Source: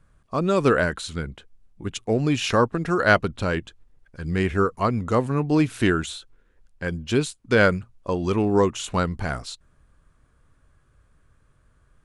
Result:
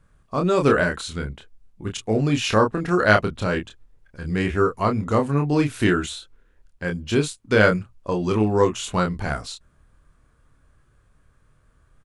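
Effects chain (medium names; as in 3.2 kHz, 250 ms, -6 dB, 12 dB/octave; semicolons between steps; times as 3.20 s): doubling 28 ms -4.5 dB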